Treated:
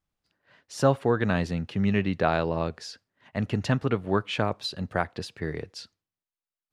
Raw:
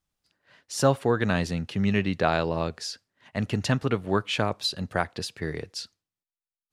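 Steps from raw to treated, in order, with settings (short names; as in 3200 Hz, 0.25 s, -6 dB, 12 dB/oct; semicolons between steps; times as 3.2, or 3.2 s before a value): high shelf 4200 Hz -10 dB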